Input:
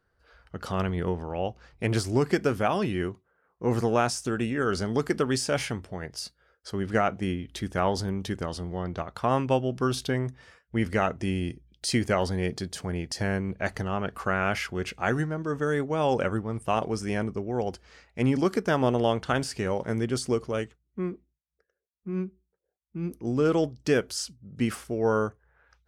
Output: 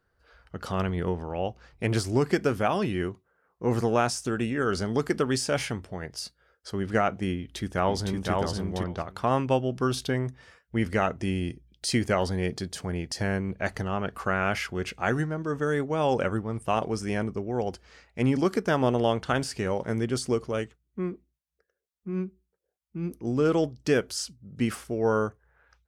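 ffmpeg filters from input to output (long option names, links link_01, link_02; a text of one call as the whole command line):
ffmpeg -i in.wav -filter_complex "[0:a]asplit=2[link_01][link_02];[link_02]afade=type=in:start_time=7.37:duration=0.01,afade=type=out:start_time=8.32:duration=0.01,aecho=0:1:510|1020:0.749894|0.0749894[link_03];[link_01][link_03]amix=inputs=2:normalize=0" out.wav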